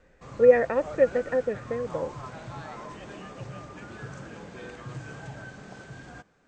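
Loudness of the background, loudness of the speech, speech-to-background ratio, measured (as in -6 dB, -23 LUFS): -41.5 LUFS, -24.0 LUFS, 17.5 dB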